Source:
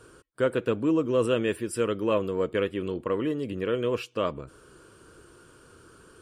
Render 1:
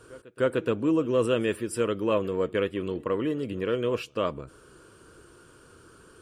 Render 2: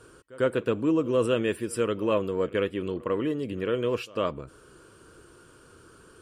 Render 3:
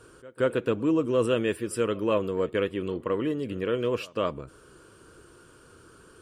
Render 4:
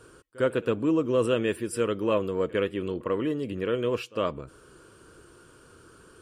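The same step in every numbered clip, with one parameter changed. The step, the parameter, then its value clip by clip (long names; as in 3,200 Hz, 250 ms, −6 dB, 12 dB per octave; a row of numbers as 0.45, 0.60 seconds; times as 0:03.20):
echo ahead of the sound, delay time: 301, 99, 177, 55 milliseconds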